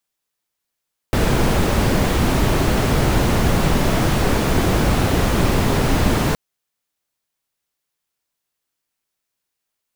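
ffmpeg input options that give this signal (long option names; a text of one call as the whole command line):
ffmpeg -f lavfi -i "anoisesrc=color=brown:amplitude=0.741:duration=5.22:sample_rate=44100:seed=1" out.wav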